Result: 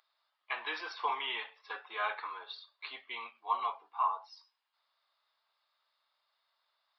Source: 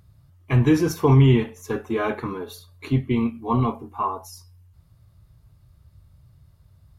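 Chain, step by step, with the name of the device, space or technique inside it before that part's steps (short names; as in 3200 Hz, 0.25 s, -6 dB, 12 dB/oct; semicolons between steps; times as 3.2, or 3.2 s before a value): musical greeting card (downsampling 11025 Hz; HPF 800 Hz 24 dB/oct; bell 3600 Hz +5 dB 0.31 oct); gain -4.5 dB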